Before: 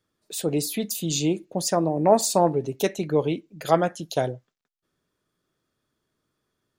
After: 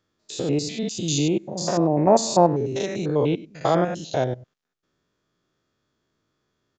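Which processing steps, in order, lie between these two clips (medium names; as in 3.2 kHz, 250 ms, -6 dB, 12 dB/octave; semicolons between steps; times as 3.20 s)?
spectrogram pixelated in time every 100 ms; resampled via 16 kHz; trim +4.5 dB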